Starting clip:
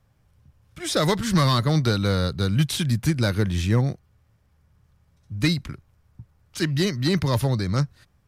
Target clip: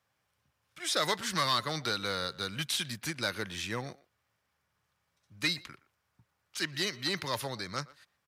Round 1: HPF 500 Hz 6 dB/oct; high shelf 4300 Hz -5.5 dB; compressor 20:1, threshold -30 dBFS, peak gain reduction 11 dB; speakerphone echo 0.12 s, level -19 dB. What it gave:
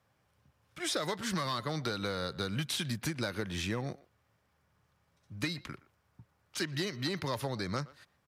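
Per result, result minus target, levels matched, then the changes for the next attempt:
compressor: peak gain reduction +11 dB; 500 Hz band +3.0 dB
remove: compressor 20:1, threshold -30 dBFS, peak gain reduction 11 dB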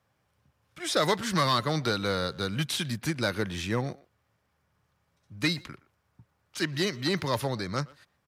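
500 Hz band +4.0 dB
change: HPF 1600 Hz 6 dB/oct

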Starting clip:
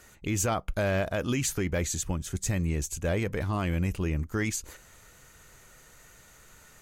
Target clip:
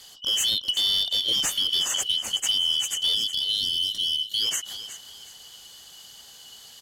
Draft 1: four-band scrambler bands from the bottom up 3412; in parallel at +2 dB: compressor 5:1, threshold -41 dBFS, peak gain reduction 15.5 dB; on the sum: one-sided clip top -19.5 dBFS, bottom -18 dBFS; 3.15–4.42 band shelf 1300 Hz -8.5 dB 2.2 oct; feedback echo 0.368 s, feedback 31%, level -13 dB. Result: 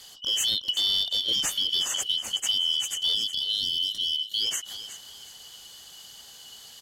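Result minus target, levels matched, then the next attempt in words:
compressor: peak gain reduction +8 dB
four-band scrambler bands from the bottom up 3412; in parallel at +2 dB: compressor 5:1, threshold -31 dBFS, peak gain reduction 7.5 dB; on the sum: one-sided clip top -19.5 dBFS, bottom -18 dBFS; 3.15–4.42 band shelf 1300 Hz -8.5 dB 2.2 oct; feedback echo 0.368 s, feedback 31%, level -13 dB

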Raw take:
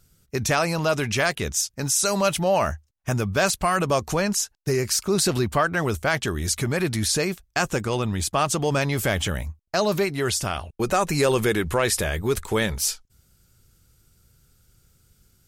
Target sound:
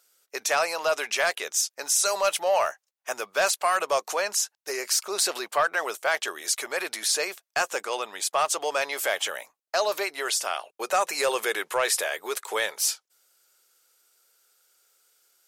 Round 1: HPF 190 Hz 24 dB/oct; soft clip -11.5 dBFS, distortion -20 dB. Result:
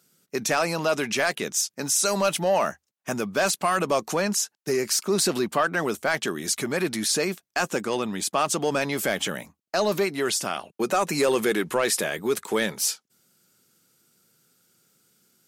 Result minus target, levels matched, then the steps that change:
250 Hz band +15.0 dB
change: HPF 510 Hz 24 dB/oct

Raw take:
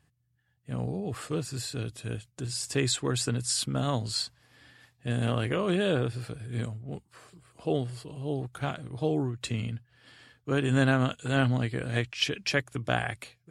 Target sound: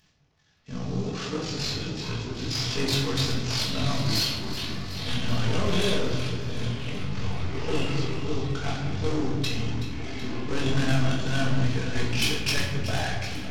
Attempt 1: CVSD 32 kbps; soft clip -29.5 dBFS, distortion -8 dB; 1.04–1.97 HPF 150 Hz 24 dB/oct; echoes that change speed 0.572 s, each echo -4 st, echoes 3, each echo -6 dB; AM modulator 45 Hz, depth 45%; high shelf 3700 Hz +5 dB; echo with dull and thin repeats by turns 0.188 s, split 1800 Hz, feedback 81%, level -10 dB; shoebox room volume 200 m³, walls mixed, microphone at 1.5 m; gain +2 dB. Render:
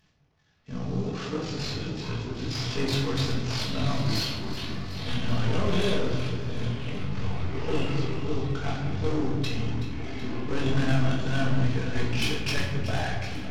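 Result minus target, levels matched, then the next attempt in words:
8000 Hz band -5.0 dB
CVSD 32 kbps; soft clip -29.5 dBFS, distortion -8 dB; 1.04–1.97 HPF 150 Hz 24 dB/oct; echoes that change speed 0.572 s, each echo -4 st, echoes 3, each echo -6 dB; AM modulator 45 Hz, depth 45%; high shelf 3700 Hz +13.5 dB; echo with dull and thin repeats by turns 0.188 s, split 1800 Hz, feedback 81%, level -10 dB; shoebox room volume 200 m³, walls mixed, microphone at 1.5 m; gain +2 dB

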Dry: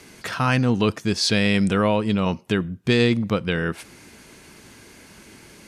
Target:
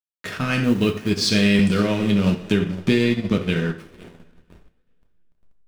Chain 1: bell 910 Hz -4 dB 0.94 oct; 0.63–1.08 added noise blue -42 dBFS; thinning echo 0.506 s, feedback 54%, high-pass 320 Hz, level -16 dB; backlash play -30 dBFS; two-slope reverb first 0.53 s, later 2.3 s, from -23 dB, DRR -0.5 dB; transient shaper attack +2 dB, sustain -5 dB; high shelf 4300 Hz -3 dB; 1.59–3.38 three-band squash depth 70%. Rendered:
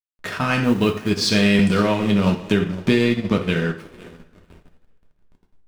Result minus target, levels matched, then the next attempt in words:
1000 Hz band +5.0 dB
bell 910 Hz -13.5 dB 0.94 oct; 0.63–1.08 added noise blue -42 dBFS; thinning echo 0.506 s, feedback 54%, high-pass 320 Hz, level -16 dB; backlash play -30 dBFS; two-slope reverb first 0.53 s, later 2.3 s, from -23 dB, DRR -0.5 dB; transient shaper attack +2 dB, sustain -5 dB; high shelf 4300 Hz -3 dB; 1.59–3.38 three-band squash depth 70%

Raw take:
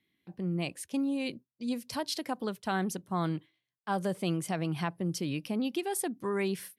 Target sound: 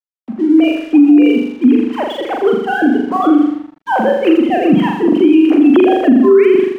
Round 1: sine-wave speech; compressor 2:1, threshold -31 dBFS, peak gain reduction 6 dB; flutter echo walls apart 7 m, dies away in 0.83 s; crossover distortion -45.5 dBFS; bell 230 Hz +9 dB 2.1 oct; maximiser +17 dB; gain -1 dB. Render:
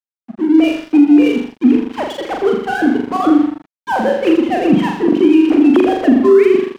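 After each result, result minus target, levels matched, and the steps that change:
crossover distortion: distortion +12 dB; compressor: peak gain reduction +6 dB
change: crossover distortion -55.5 dBFS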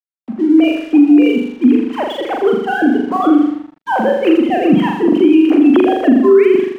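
compressor: peak gain reduction +6 dB
remove: compressor 2:1, threshold -31 dBFS, peak gain reduction 6 dB

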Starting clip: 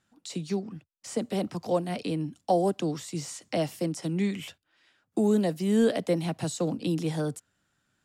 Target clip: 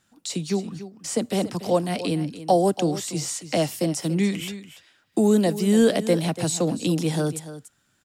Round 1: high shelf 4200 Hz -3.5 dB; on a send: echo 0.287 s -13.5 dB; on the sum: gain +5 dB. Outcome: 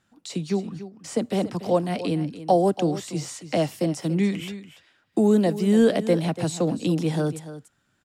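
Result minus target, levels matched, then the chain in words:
8000 Hz band -7.5 dB
high shelf 4200 Hz +6.5 dB; on a send: echo 0.287 s -13.5 dB; on the sum: gain +5 dB

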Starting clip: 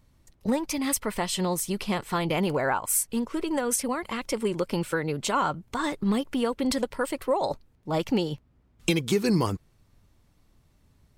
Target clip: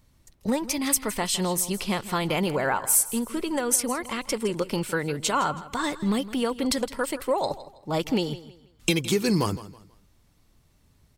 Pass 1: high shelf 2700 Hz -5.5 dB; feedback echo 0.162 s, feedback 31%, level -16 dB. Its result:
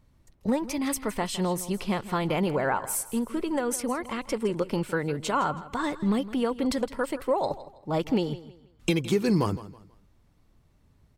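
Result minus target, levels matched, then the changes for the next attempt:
4000 Hz band -4.5 dB
change: high shelf 2700 Hz +5 dB

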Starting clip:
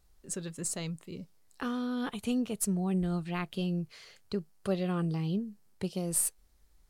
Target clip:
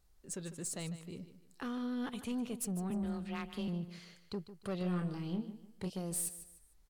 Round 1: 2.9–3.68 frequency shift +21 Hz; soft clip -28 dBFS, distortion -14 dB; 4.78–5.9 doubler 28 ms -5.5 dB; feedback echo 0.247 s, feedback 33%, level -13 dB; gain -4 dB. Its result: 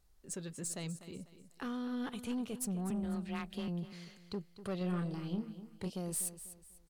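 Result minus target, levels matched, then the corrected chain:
echo 97 ms late
2.9–3.68 frequency shift +21 Hz; soft clip -28 dBFS, distortion -14 dB; 4.78–5.9 doubler 28 ms -5.5 dB; feedback echo 0.15 s, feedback 33%, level -13 dB; gain -4 dB

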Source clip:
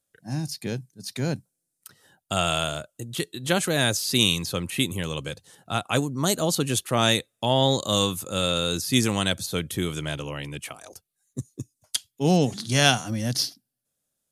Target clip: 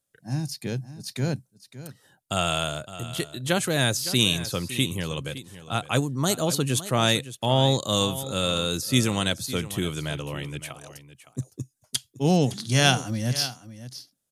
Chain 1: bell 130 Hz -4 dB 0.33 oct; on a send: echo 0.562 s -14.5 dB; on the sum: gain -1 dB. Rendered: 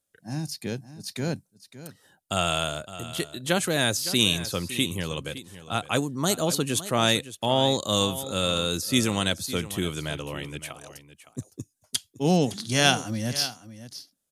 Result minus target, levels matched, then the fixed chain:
125 Hz band -4.0 dB
bell 130 Hz +4.5 dB 0.33 oct; on a send: echo 0.562 s -14.5 dB; on the sum: gain -1 dB

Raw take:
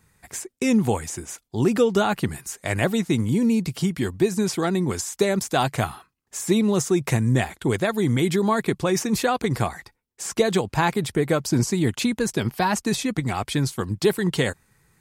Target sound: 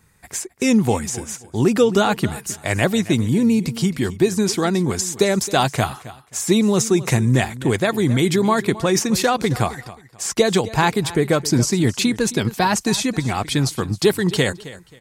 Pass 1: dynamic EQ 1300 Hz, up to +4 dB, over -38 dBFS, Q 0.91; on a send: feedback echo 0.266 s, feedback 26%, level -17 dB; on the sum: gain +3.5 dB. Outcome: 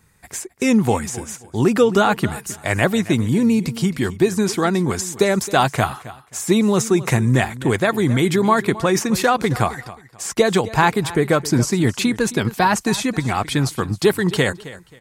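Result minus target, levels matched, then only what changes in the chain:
4000 Hz band -2.5 dB
change: dynamic EQ 5200 Hz, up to +4 dB, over -38 dBFS, Q 0.91

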